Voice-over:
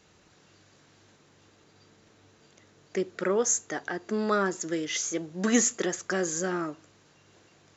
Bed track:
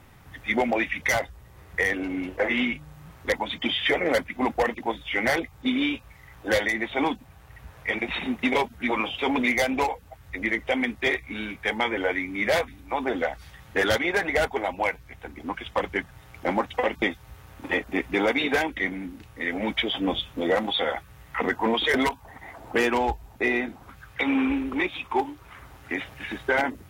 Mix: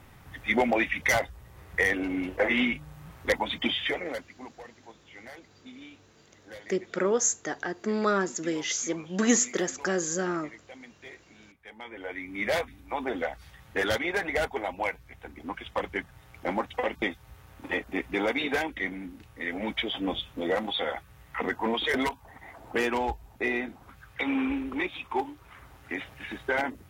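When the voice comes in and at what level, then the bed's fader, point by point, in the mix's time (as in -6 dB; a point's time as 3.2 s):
3.75 s, +0.5 dB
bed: 3.64 s -0.5 dB
4.59 s -22.5 dB
11.64 s -22.5 dB
12.4 s -4.5 dB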